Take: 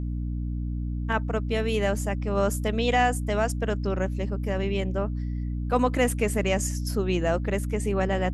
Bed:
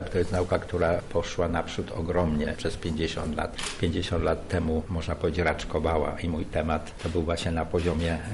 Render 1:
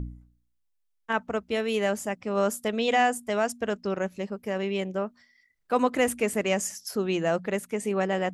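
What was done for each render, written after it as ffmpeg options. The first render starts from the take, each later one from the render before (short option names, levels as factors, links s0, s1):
-af "bandreject=f=60:t=h:w=4,bandreject=f=120:t=h:w=4,bandreject=f=180:t=h:w=4,bandreject=f=240:t=h:w=4,bandreject=f=300:t=h:w=4"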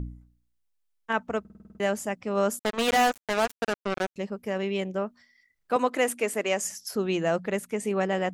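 -filter_complex "[0:a]asettb=1/sr,asplit=3[s0][s1][s2];[s0]atrim=end=2.594[s3];[s1]atrim=start=2.59:end=4.16,asetpts=PTS-STARTPTS,afade=t=in:d=0.004:c=qsin,afade=t=out:st=1.566:d=0.004:c=qsin,acrusher=bits=3:mix=0:aa=0.5[s4];[s2]atrim=start=4.156[s5];[s3][s4]acrossfade=d=0.004:c1=hsin:c2=qsin[s6];[s6][s5]acrossfade=d=0.004:c1=qsin:c2=hsin,asettb=1/sr,asplit=3[s7][s8][s9];[s7]atrim=end=5.764[s10];[s8]atrim=start=5.76:end=6.65,asetpts=PTS-STARTPTS,afade=t=in:d=0.004:c=qsin,afade=t=out:st=0.886:d=0.004:c=qsin,highpass=300[s11];[s9]atrim=start=6.646[s12];[s10][s11]acrossfade=d=0.004:c1=hsin:c2=qsin[s13];[s13][s12]acrossfade=d=0.004:c1=qsin:c2=hsin,asplit=9[s14][s15][s16][s17][s18][s19][s20][s21][s22];[s14]atrim=end=1.452[s23];[s15]atrim=start=1.398:end=1.452[s24];[s16]atrim=start=1.398:end=1.452[s25];[s17]atrim=start=1.398:end=1.452[s26];[s18]atrim=start=1.398:end=1.452[s27];[s19]atrim=start=1.398:end=1.452[s28];[s20]atrim=start=1.398:end=1.452[s29];[s21]atrim=start=1.398:end=1.452[s30];[s22]atrim=start=1.798[s31];[s23][s24]acrossfade=d=0.004:c1=hsin:c2=hsin[s32];[s32][s25]acrossfade=d=0.004:c1=hsin:c2=hsin[s33];[s33][s26]acrossfade=d=0.004:c1=hsin:c2=hsin[s34];[s34][s27]acrossfade=d=0.004:c1=hsin:c2=hsin[s35];[s35][s28]acrossfade=d=0.004:c1=hsin:c2=hsin[s36];[s36][s29]acrossfade=d=0.004:c1=hsin:c2=hsin[s37];[s37][s30]acrossfade=d=0.004:c1=hsin:c2=hsin[s38];[s38][s31]acrossfade=d=0.004:c1=hsin:c2=hsin"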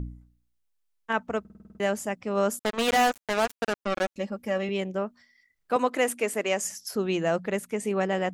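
-filter_complex "[0:a]asettb=1/sr,asplit=3[s0][s1][s2];[s0]atrim=end=3.824[s3];[s1]atrim=start=3.82:end=4.69,asetpts=PTS-STARTPTS,afade=t=in:d=0.004:c=qsin,afade=t=out:st=0.866:d=0.004:c=qsin,aecho=1:1:3.6:0.65,atrim=end_sample=38367[s4];[s2]atrim=start=4.686[s5];[s3][s4]acrossfade=d=0.004:c1=hsin:c2=qsin[s6];[s6][s5]acrossfade=d=0.004:c1=qsin:c2=hsin"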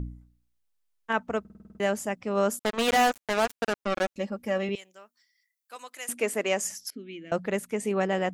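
-filter_complex "[0:a]asettb=1/sr,asplit=3[s0][s1][s2];[s0]atrim=end=4.754[s3];[s1]atrim=start=4.75:end=6.09,asetpts=PTS-STARTPTS,afade=t=in:d=0.004:c=qsin,afade=t=out:st=1.336:d=0.004:c=qsin,aderivative[s4];[s2]atrim=start=6.086[s5];[s3][s4]acrossfade=d=0.004:c1=hsin:c2=qsin[s6];[s6][s5]acrossfade=d=0.004:c1=qsin:c2=hsin,asettb=1/sr,asplit=3[s7][s8][s9];[s7]atrim=end=6.904[s10];[s8]atrim=start=6.9:end=7.32,asetpts=PTS-STARTPTS,afade=t=in:d=0.004:c=qsin,afade=t=out:st=0.416:d=0.004:c=qsin,asplit=3[s11][s12][s13];[s11]bandpass=f=270:t=q:w=8,volume=1[s14];[s12]bandpass=f=2290:t=q:w=8,volume=0.501[s15];[s13]bandpass=f=3010:t=q:w=8,volume=0.355[s16];[s14][s15][s16]amix=inputs=3:normalize=0[s17];[s9]atrim=start=7.316[s18];[s10][s17]acrossfade=d=0.004:c1=hsin:c2=qsin[s19];[s19][s18]acrossfade=d=0.004:c1=qsin:c2=hsin"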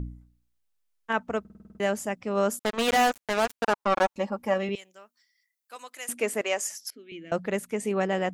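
-filter_complex "[0:a]asettb=1/sr,asplit=3[s0][s1][s2];[s0]atrim=end=3.644[s3];[s1]atrim=start=3.64:end=4.54,asetpts=PTS-STARTPTS,afade=t=in:d=0.004:c=qsin,afade=t=out:st=0.896:d=0.004:c=qsin,equalizer=f=940:t=o:w=0.77:g=13.5[s4];[s2]atrim=start=4.536[s5];[s3][s4]acrossfade=d=0.004:c1=hsin:c2=qsin[s6];[s6][s5]acrossfade=d=0.004:c1=qsin:c2=hsin,asettb=1/sr,asplit=3[s7][s8][s9];[s7]atrim=end=6.414[s10];[s8]atrim=start=6.41:end=7.12,asetpts=PTS-STARTPTS,afade=t=in:d=0.004:c=qsin,afade=t=out:st=0.706:d=0.004:c=qsin,highpass=440[s11];[s9]atrim=start=7.116[s12];[s10][s11]acrossfade=d=0.004:c1=hsin:c2=qsin[s13];[s13][s12]acrossfade=d=0.004:c1=qsin:c2=hsin"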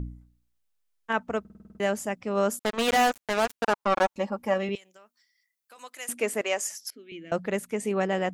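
-filter_complex "[0:a]asettb=1/sr,asplit=3[s0][s1][s2];[s0]atrim=end=4.774[s3];[s1]atrim=start=4.77:end=5.78,asetpts=PTS-STARTPTS,afade=t=in:d=0.004:c=qsin,afade=t=out:st=1.006:d=0.004:c=qsin,acompressor=threshold=0.00447:ratio=6:attack=3.2:release=140:knee=1:detection=peak[s4];[s2]atrim=start=5.776[s5];[s3][s4]acrossfade=d=0.004:c1=hsin:c2=qsin[s6];[s6][s5]acrossfade=d=0.004:c1=qsin:c2=hsin"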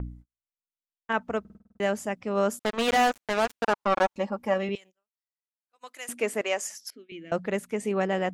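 -af "agate=range=0.0141:threshold=0.00447:ratio=16:detection=peak,highshelf=f=8100:g=-7"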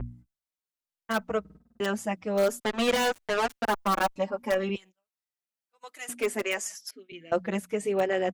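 -filter_complex "[0:a]asplit=2[s0][s1];[s1]aeval=exprs='(mod(6.68*val(0)+1,2)-1)/6.68':c=same,volume=0.398[s2];[s0][s2]amix=inputs=2:normalize=0,asplit=2[s3][s4];[s4]adelay=5.3,afreqshift=-1.1[s5];[s3][s5]amix=inputs=2:normalize=1"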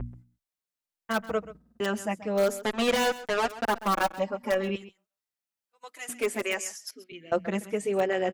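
-af "aecho=1:1:132:0.158"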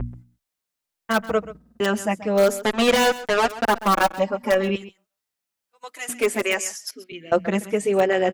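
-af "volume=2.24"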